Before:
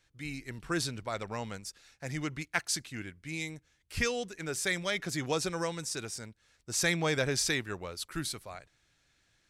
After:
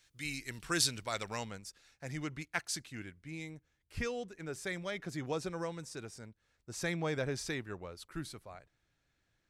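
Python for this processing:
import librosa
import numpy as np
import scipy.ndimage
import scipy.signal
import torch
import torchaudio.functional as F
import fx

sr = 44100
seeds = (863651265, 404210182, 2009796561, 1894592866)

y = fx.high_shelf(x, sr, hz=2000.0, db=fx.steps((0.0, 11.0), (1.43, -2.0), (3.23, -9.5)))
y = y * 10.0 ** (-4.0 / 20.0)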